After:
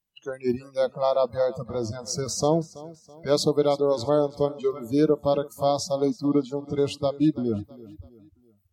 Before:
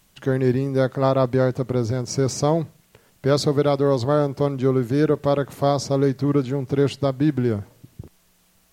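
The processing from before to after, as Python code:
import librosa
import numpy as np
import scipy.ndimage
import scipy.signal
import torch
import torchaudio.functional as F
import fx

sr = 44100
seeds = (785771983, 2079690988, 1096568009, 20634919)

p1 = fx.noise_reduce_blind(x, sr, reduce_db=28)
p2 = fx.dynamic_eq(p1, sr, hz=1500.0, q=1.2, threshold_db=-40.0, ratio=4.0, max_db=-8)
y = p2 + fx.echo_feedback(p2, sr, ms=329, feedback_pct=42, wet_db=-19, dry=0)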